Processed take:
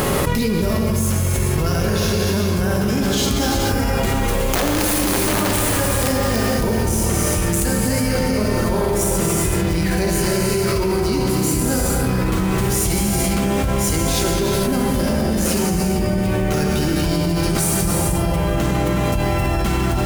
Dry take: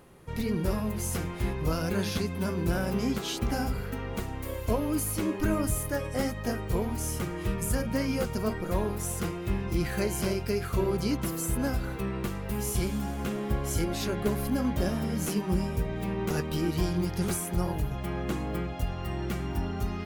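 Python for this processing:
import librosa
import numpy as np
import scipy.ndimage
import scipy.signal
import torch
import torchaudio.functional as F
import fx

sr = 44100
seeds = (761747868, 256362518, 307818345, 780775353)

p1 = scipy.signal.medfilt(x, 3)
p2 = fx.doppler_pass(p1, sr, speed_mps=13, closest_m=16.0, pass_at_s=4.89)
p3 = fx.high_shelf(p2, sr, hz=5400.0, db=9.5)
p4 = fx.rider(p3, sr, range_db=5, speed_s=2.0)
p5 = p3 + (p4 * librosa.db_to_amplitude(-2.0))
p6 = (np.mod(10.0 ** (17.0 / 20.0) * p5 + 1.0, 2.0) - 1.0) / 10.0 ** (17.0 / 20.0)
p7 = p6 + fx.echo_bbd(p6, sr, ms=88, stages=1024, feedback_pct=83, wet_db=-14.0, dry=0)
p8 = fx.rev_gated(p7, sr, seeds[0], gate_ms=490, shape='flat', drr_db=-1.0)
y = fx.env_flatten(p8, sr, amount_pct=100)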